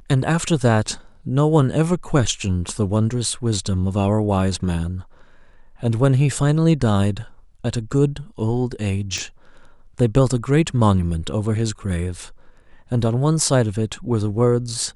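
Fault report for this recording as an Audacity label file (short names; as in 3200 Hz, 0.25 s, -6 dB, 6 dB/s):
9.180000	9.180000	pop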